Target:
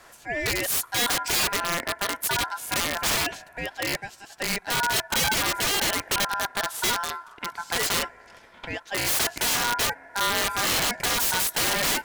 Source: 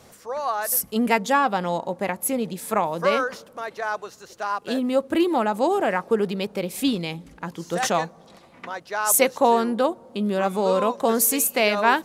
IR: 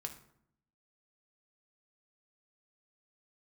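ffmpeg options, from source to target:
-af "aeval=exprs='val(0)*sin(2*PI*1200*n/s)':c=same,aeval=exprs='(mod(10*val(0)+1,2)-1)/10':c=same,volume=2.5dB"

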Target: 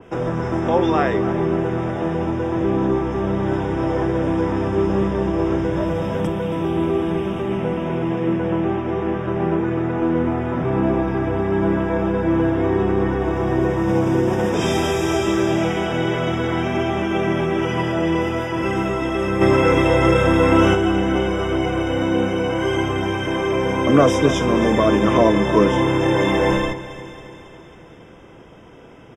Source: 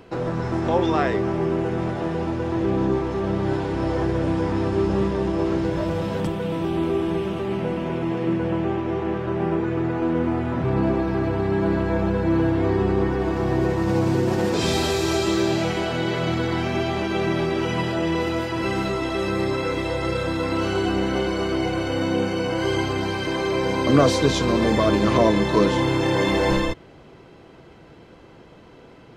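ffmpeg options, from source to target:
-filter_complex "[0:a]acrossover=split=150[a][b];[a]alimiter=level_in=4dB:limit=-24dB:level=0:latency=1,volume=-4dB[c];[c][b]amix=inputs=2:normalize=0,asettb=1/sr,asplit=3[d][e][f];[d]atrim=end=19.414[g];[e]atrim=start=19.41:end=20.75,asetpts=PTS-STARTPTS,afade=t=in:d=0.004:c=qsin,afade=t=out:st=1.336:d=0.004:c=qsin,acontrast=76[h];[f]atrim=start=20.746[i];[g][h]acrossfade=d=0.004:c1=hsin:c2=qsin[j];[j][i]acrossfade=d=0.004:c1=qsin:c2=hsin,asuperstop=centerf=4300:order=20:qfactor=3.8,aecho=1:1:274|548|822|1096|1370|1644:0.178|0.103|0.0598|0.0347|0.0201|0.0117,adynamicequalizer=threshold=0.0112:dfrequency=2800:dqfactor=0.7:tfrequency=2800:tqfactor=0.7:attack=5:release=100:ratio=0.375:range=2:mode=cutabove:tftype=highshelf,volume=3dB"

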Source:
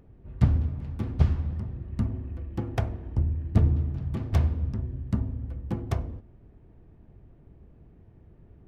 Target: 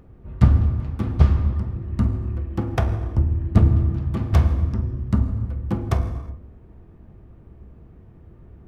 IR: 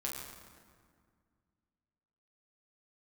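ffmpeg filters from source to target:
-filter_complex "[0:a]equalizer=f=1.2k:w=2.7:g=5,asplit=2[a][b];[1:a]atrim=start_sample=2205,afade=t=out:st=0.43:d=0.01,atrim=end_sample=19404[c];[b][c]afir=irnorm=-1:irlink=0,volume=-5.5dB[d];[a][d]amix=inputs=2:normalize=0,volume=3dB"

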